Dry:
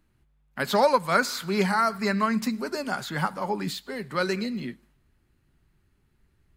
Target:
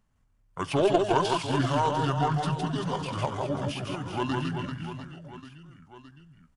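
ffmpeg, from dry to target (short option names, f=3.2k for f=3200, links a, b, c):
-af "aeval=exprs='0.422*(cos(1*acos(clip(val(0)/0.422,-1,1)))-cos(1*PI/2))+0.0266*(cos(2*acos(clip(val(0)/0.422,-1,1)))-cos(2*PI/2))+0.075*(cos(3*acos(clip(val(0)/0.422,-1,1)))-cos(3*PI/2))+0.0211*(cos(5*acos(clip(val(0)/0.422,-1,1)))-cos(5*PI/2))':c=same,aecho=1:1:160|384|697.6|1137|1751:0.631|0.398|0.251|0.158|0.1,asetrate=30296,aresample=44100,atempo=1.45565"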